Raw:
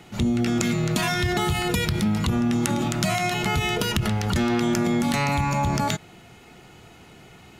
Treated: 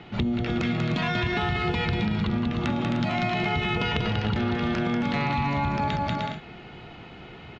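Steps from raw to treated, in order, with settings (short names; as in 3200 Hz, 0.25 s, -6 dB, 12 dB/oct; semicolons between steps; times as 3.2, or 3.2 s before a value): LPF 3900 Hz 24 dB/oct; bouncing-ball echo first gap 0.19 s, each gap 0.6×, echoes 5; compressor, threshold -25 dBFS, peak gain reduction 9 dB; gain +2.5 dB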